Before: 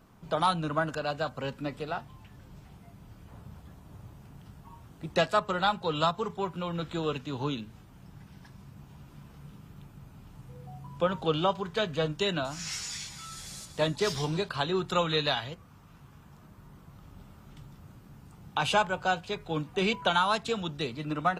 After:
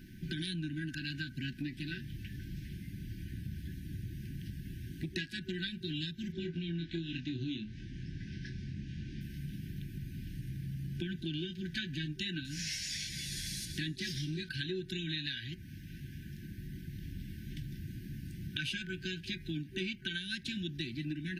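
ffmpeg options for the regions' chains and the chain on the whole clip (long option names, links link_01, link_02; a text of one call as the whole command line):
ffmpeg -i in.wav -filter_complex "[0:a]asettb=1/sr,asplit=3[link_01][link_02][link_03];[link_01]atrim=end=6.324[link_04];[link_02]atrim=start=6.32:end=9.21,asetpts=PTS-STARTPTS,afade=type=in:duration=0.004:curve=qsin,afade=type=out:start_time=2.886:duration=0.004:curve=qsin,lowpass=frequency=6400:width=0.5412,lowpass=frequency=6400:width=1.3066,asplit=2[link_05][link_06];[link_06]adelay=24,volume=-5dB[link_07];[link_05][link_07]amix=inputs=2:normalize=0,atrim=end_sample=127449[link_08];[link_03]atrim=start=9.206[link_09];[link_04][link_08]acrossfade=duration=0.004:curve1=hsin:curve2=qsin[link_10];[link_10][link_09]acrossfade=duration=0.004:curve1=qsin:curve2=hsin,afftfilt=real='re*(1-between(b*sr/4096,380,1500))':imag='im*(1-between(b*sr/4096,380,1500))':win_size=4096:overlap=0.75,equalizer=frequency=7500:width=4.6:gain=-12,acompressor=threshold=-44dB:ratio=6,volume=8dB" out.wav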